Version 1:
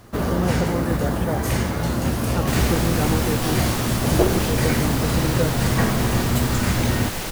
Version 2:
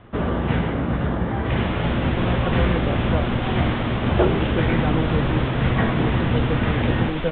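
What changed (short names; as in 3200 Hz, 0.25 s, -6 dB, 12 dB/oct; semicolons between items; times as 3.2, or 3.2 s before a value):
speech: entry +1.85 s; second sound: entry -0.90 s; master: add steep low-pass 3600 Hz 96 dB/oct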